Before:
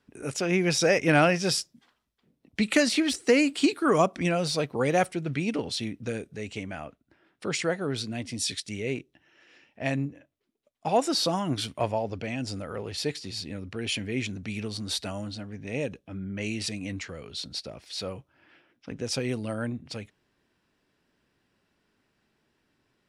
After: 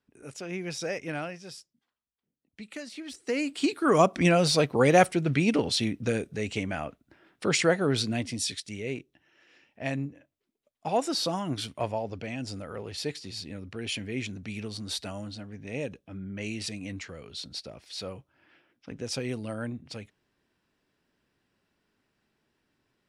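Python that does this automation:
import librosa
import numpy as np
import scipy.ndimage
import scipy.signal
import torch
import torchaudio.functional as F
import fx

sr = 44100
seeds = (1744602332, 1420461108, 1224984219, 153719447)

y = fx.gain(x, sr, db=fx.line((0.95, -10.5), (1.45, -18.0), (2.91, -18.0), (3.4, -7.0), (4.21, 4.5), (8.14, 4.5), (8.55, -3.0)))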